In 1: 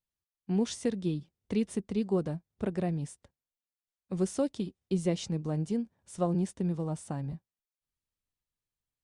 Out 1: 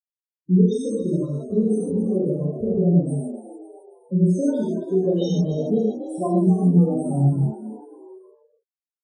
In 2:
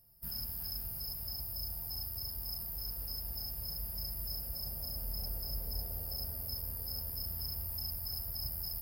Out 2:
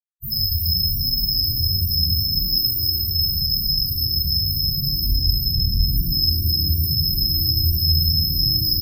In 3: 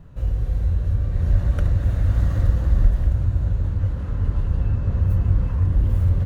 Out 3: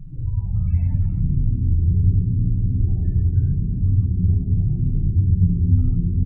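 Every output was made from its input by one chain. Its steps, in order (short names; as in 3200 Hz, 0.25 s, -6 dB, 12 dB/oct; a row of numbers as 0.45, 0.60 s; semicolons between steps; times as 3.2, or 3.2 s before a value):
spectral gate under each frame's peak -20 dB strong; notches 50/100/150/200/250/300/350/400/450/500 Hz; dynamic EQ 460 Hz, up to +6 dB, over -50 dBFS, Q 5; compressor 2.5:1, threshold -32 dBFS; flange 0.83 Hz, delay 6.4 ms, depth 5.7 ms, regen +9%; bit-crush 8-bit; loudest bins only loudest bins 8; frequency-shifting echo 0.274 s, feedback 41%, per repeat +79 Hz, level -12 dB; non-linear reverb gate 0.18 s flat, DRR -5.5 dB; normalise peaks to -6 dBFS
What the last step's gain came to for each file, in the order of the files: +11.5, +24.5, +10.0 dB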